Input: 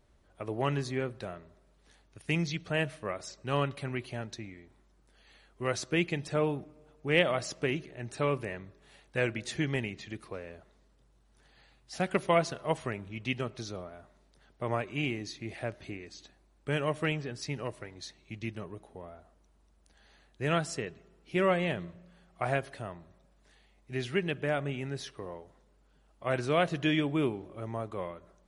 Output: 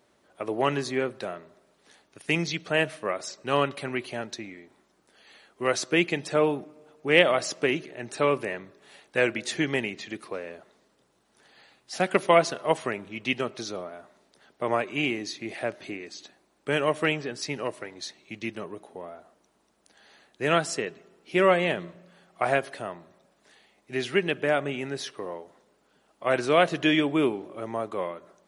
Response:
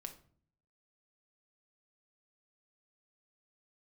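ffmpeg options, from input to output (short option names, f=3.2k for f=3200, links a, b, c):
-af "highpass=240,volume=7dB"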